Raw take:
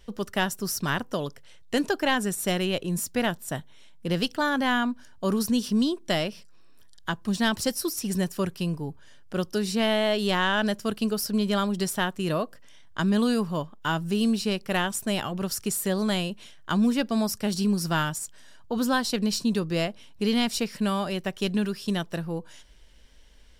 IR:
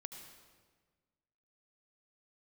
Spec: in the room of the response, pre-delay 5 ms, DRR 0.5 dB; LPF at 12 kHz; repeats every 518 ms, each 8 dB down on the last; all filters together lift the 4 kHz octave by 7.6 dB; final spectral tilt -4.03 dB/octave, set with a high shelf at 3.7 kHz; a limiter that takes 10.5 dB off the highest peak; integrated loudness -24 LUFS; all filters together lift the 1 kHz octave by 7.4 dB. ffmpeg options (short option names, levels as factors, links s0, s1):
-filter_complex "[0:a]lowpass=12000,equalizer=f=1000:t=o:g=8.5,highshelf=f=3700:g=3.5,equalizer=f=4000:t=o:g=7.5,alimiter=limit=0.2:level=0:latency=1,aecho=1:1:518|1036|1554|2072|2590:0.398|0.159|0.0637|0.0255|0.0102,asplit=2[s0][s1];[1:a]atrim=start_sample=2205,adelay=5[s2];[s1][s2]afir=irnorm=-1:irlink=0,volume=1.5[s3];[s0][s3]amix=inputs=2:normalize=0,volume=0.75"